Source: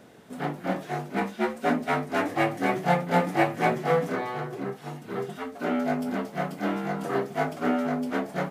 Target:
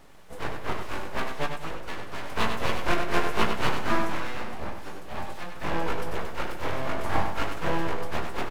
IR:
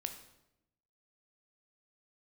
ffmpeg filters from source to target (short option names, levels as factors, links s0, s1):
-filter_complex "[0:a]asettb=1/sr,asplit=3[s0][s1][s2];[s0]atrim=end=1.464[s3];[s1]atrim=start=1.46:end=2.3,asetpts=PTS-STARTPTS,afade=t=in:d=0.004:c=qsin,afade=t=out:st=0.836:d=0.004:c=qsin,acompressor=threshold=0.0224:ratio=3[s4];[s2]atrim=start=2.296[s5];[s3][s4]acrossfade=d=0.004:c1=hsin:c2=qsin[s6];[s6][s5]acrossfade=d=0.004:c1=qsin:c2=hsin,asettb=1/sr,asplit=3[s7][s8][s9];[s7]atrim=end=5.074[s10];[s8]atrim=start=5.07:end=5.74,asetpts=PTS-STARTPTS,afade=t=in:d=0.004:c=qsin,afade=t=out:st=0.666:d=0.004:c=qsin,highpass=f=170:w=0.5412,highpass=f=170:w=1.3066[s11];[s9]atrim=start=5.736[s12];[s10][s11]acrossfade=d=0.004:c1=hsin:c2=qsin[s13];[s13][s12]acrossfade=d=0.004:c1=qsin:c2=hsin,asettb=1/sr,asplit=3[s14][s15][s16];[s14]atrim=end=6.784[s17];[s15]atrim=start=6.78:end=7.24,asetpts=PTS-STARTPTS,afade=t=in:d=0.004:c=qsin,afade=t=out:st=0.456:d=0.004:c=qsin,equalizer=f=450:w=1.5:g=6[s18];[s16]atrim=start=7.236[s19];[s17][s18]acrossfade=d=0.004:c1=hsin:c2=qsin[s20];[s20][s19]acrossfade=d=0.004:c1=qsin:c2=hsin,aeval=exprs='abs(val(0))':c=same,asplit=2[s21][s22];[s22]adelay=18,volume=0.237[s23];[s21][s23]amix=inputs=2:normalize=0,aecho=1:1:97|194|291|388:0.473|0.17|0.0613|0.0221"